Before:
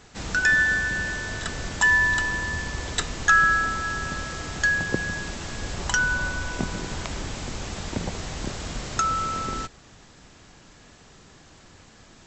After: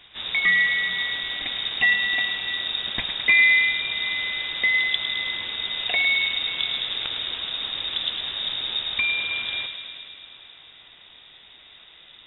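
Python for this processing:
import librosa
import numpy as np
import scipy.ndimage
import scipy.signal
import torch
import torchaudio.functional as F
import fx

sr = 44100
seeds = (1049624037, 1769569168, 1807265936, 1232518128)

y = fx.echo_wet_lowpass(x, sr, ms=106, feedback_pct=76, hz=2500.0, wet_db=-6.5)
y = fx.freq_invert(y, sr, carrier_hz=3700)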